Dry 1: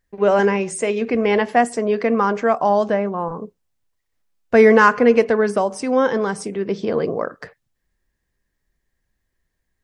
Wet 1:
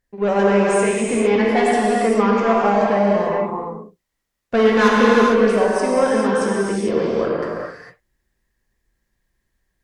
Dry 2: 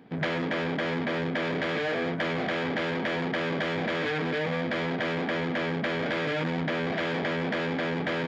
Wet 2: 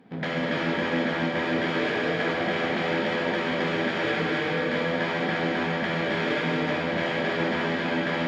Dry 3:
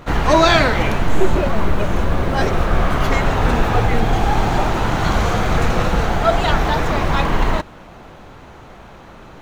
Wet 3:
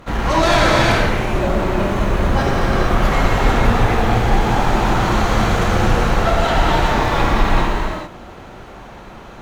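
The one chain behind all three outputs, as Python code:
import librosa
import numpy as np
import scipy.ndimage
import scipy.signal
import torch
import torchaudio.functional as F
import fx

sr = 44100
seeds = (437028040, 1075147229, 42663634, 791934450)

y = fx.cheby_harmonics(x, sr, harmonics=(5, 8), levels_db=(-13, -31), full_scale_db=-1.0)
y = fx.rev_gated(y, sr, seeds[0], gate_ms=480, shape='flat', drr_db=-4.5)
y = y * librosa.db_to_amplitude(-9.0)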